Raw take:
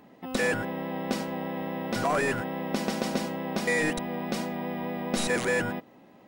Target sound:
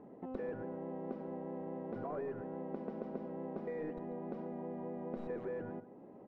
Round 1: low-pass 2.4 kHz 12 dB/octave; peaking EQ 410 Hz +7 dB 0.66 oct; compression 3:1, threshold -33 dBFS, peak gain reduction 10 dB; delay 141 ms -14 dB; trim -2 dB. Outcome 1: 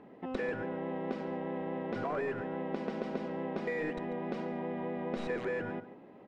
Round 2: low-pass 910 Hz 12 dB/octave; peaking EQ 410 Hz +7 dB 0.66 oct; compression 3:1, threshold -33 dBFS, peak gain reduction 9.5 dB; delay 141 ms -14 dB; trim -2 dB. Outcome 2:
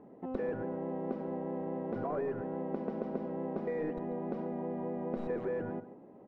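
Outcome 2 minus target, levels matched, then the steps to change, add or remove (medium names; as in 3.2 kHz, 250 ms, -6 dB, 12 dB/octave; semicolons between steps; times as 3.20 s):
compression: peak gain reduction -5.5 dB
change: compression 3:1, threshold -41.5 dBFS, peak gain reduction 15.5 dB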